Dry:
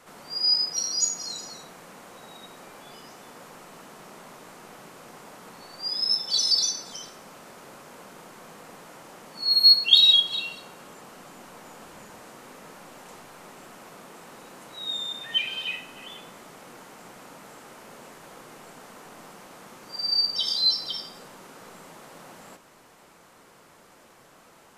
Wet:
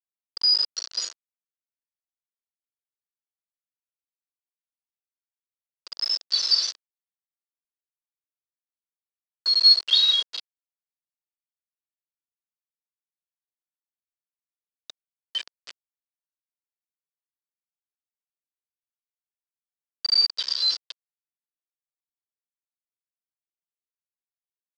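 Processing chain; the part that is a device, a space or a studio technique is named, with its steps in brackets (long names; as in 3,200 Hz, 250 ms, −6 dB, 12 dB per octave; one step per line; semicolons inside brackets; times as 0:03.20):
hand-held game console (bit reduction 4 bits; loudspeaker in its box 490–5,700 Hz, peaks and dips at 800 Hz −9 dB, 2,300 Hz −5 dB, 4,700 Hz +9 dB)
level −5 dB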